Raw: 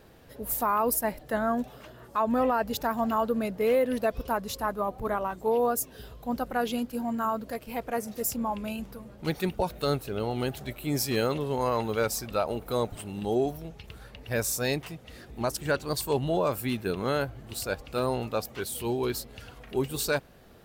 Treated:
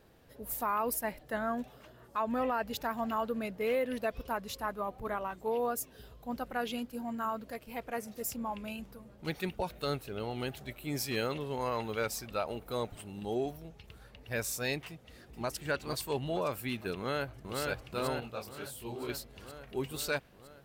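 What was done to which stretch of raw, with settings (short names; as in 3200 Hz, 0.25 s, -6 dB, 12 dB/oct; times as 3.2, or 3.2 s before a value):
14.87–15.55 echo throw 0.46 s, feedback 50%, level -8 dB
16.96–17.59 echo throw 0.48 s, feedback 70%, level -2.5 dB
18.2–19.09 detuned doubles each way 59 cents
whole clip: dynamic EQ 2400 Hz, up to +6 dB, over -45 dBFS, Q 0.93; gain -7.5 dB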